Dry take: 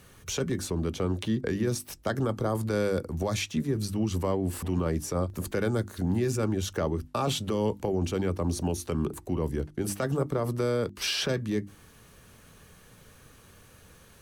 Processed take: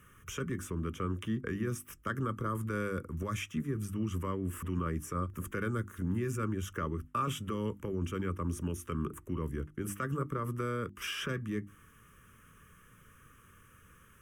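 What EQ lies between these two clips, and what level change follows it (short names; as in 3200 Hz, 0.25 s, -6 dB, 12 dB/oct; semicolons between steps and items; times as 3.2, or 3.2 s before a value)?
bell 1200 Hz +10 dB 0.51 oct; bell 3100 Hz +4.5 dB 0.22 oct; fixed phaser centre 1800 Hz, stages 4; -5.0 dB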